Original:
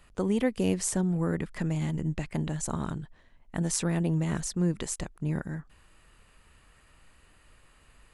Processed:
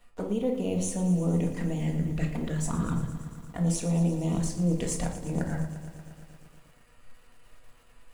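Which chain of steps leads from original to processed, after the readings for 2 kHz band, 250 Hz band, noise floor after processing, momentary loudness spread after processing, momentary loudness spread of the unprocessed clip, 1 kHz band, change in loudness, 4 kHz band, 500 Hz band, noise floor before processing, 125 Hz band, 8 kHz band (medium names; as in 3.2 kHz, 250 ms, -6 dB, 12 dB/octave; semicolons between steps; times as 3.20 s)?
-3.0 dB, +1.5 dB, -57 dBFS, 10 LU, 9 LU, 0.0 dB, +1.0 dB, -3.0 dB, +0.5 dB, -60 dBFS, +2.0 dB, -2.5 dB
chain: companding laws mixed up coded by A; touch-sensitive flanger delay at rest 8.6 ms, full sweep at -26 dBFS; reverse; compression, threshold -37 dBFS, peak gain reduction 14 dB; reverse; peaking EQ 600 Hz +5.5 dB 0.9 oct; simulated room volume 530 m³, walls furnished, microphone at 1.8 m; bit-crushed delay 116 ms, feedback 80%, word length 10-bit, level -13.5 dB; trim +7 dB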